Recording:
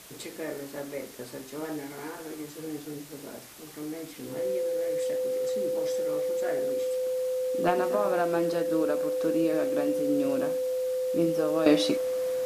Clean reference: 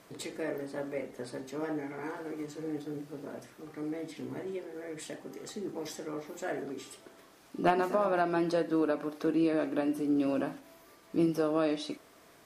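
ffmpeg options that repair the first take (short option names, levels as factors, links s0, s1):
-af "bandreject=f=510:w=30,afwtdn=0.004,asetnsamples=n=441:p=0,asendcmd='11.66 volume volume -11dB',volume=1"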